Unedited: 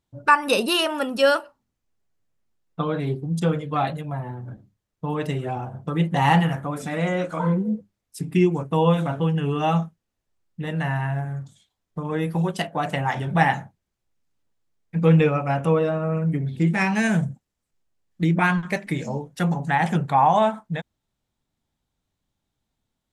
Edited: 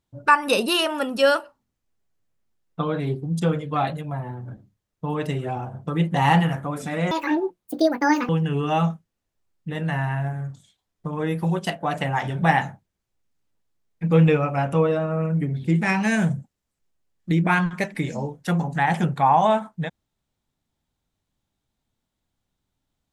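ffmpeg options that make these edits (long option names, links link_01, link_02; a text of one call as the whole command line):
ffmpeg -i in.wav -filter_complex "[0:a]asplit=3[link_01][link_02][link_03];[link_01]atrim=end=7.114[link_04];[link_02]atrim=start=7.11:end=9.21,asetpts=PTS-STARTPTS,asetrate=78498,aresample=44100,atrim=end_sample=52028,asetpts=PTS-STARTPTS[link_05];[link_03]atrim=start=9.206[link_06];[link_04][link_05]acrossfade=duration=0.004:curve1=hsin:curve2=hsin[link_07];[link_07][link_06]acrossfade=duration=0.004:curve1=hsin:curve2=hsin" out.wav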